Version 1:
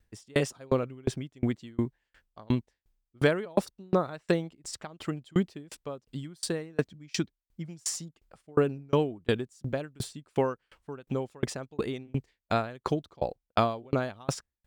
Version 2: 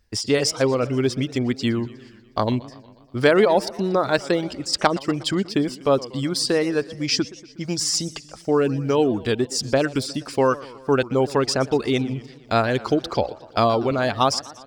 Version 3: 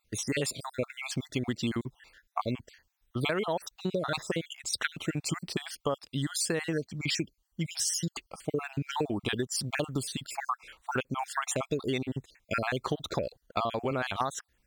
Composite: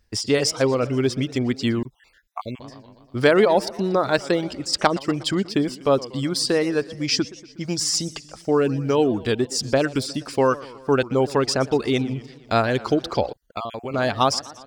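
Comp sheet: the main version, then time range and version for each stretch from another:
2
0:01.83–0:02.60: punch in from 3
0:13.33–0:13.94: punch in from 3
not used: 1

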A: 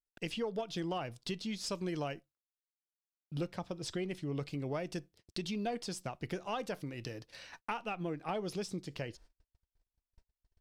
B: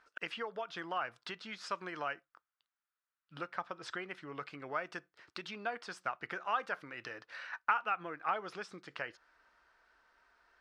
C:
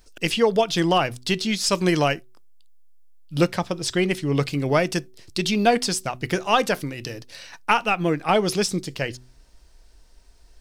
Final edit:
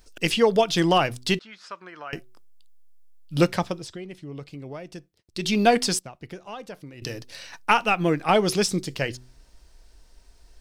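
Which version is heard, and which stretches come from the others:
C
0:01.39–0:02.13: punch in from B
0:03.76–0:05.42: punch in from A, crossfade 0.24 s
0:05.99–0:07.02: punch in from A

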